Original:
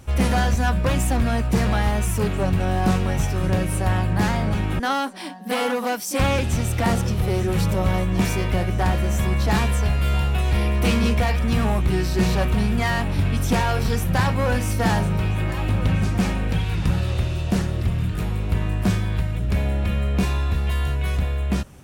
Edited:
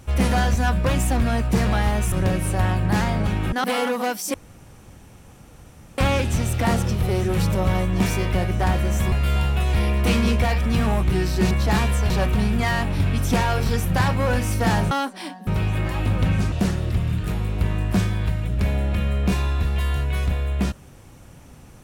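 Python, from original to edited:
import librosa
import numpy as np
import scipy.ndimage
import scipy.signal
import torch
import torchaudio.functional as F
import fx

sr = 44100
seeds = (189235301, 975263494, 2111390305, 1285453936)

y = fx.edit(x, sr, fx.cut(start_s=2.12, length_s=1.27),
    fx.move(start_s=4.91, length_s=0.56, to_s=15.1),
    fx.insert_room_tone(at_s=6.17, length_s=1.64),
    fx.move(start_s=9.31, length_s=0.59, to_s=12.29),
    fx.cut(start_s=16.15, length_s=1.28), tone=tone)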